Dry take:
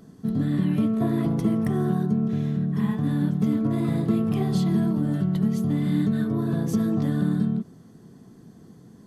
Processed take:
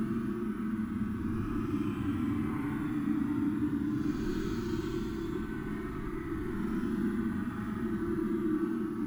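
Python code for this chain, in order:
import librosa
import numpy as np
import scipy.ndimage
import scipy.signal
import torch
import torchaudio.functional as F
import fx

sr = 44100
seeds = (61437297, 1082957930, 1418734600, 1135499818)

y = fx.lower_of_two(x, sr, delay_ms=8.7)
y = np.repeat(y[::4], 4)[:len(y)]
y = fx.quant_companded(y, sr, bits=6)
y = fx.curve_eq(y, sr, hz=(110.0, 180.0, 300.0, 480.0, 1300.0, 4500.0), db=(0, -12, 13, -28, 8, -10))
y = fx.paulstretch(y, sr, seeds[0], factor=12.0, window_s=0.05, from_s=4.2)
y = y * 10.0 ** (-8.0 / 20.0)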